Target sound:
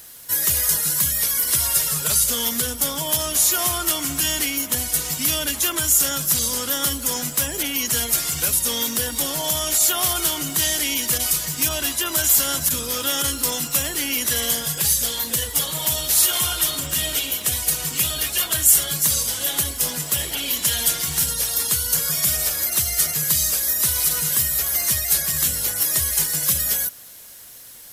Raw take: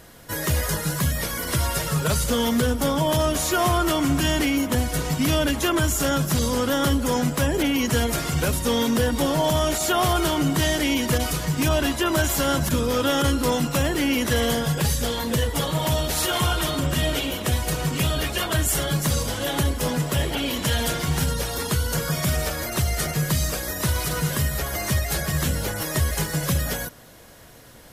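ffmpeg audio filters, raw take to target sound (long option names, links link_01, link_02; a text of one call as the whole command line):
ffmpeg -i in.wav -af "crystalizer=i=9:c=0,acrusher=bits=5:mix=0:aa=0.5,volume=-10.5dB" out.wav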